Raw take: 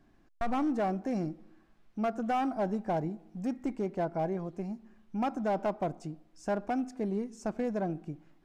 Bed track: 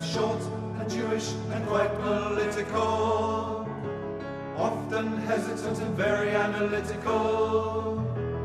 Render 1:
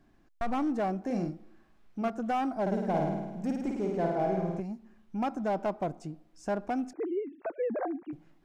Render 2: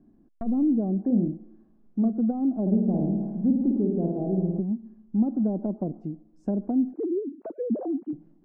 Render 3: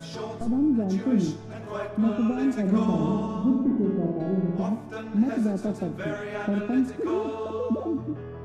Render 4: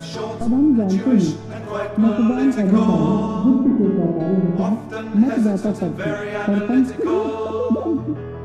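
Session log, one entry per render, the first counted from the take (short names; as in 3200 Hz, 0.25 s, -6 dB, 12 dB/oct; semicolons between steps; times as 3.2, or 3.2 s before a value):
1.06–2.1 doubler 40 ms -5 dB; 2.61–4.6 flutter echo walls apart 9.1 m, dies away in 1.1 s; 6.93–8.13 sine-wave speech
treble ducked by the level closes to 550 Hz, closed at -27.5 dBFS; EQ curve 120 Hz 0 dB, 220 Hz +12 dB, 2300 Hz -19 dB
add bed track -7.5 dB
gain +7.5 dB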